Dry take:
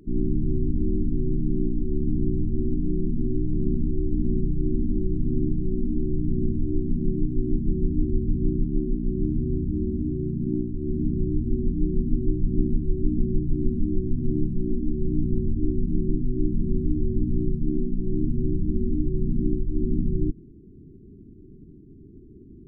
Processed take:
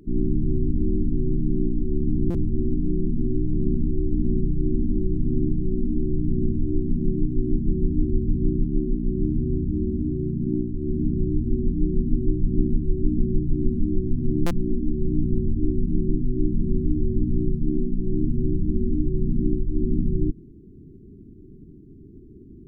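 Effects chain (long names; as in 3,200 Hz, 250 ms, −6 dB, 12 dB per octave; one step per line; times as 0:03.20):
buffer that repeats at 0:02.30/0:14.46, samples 256, times 7
level +1.5 dB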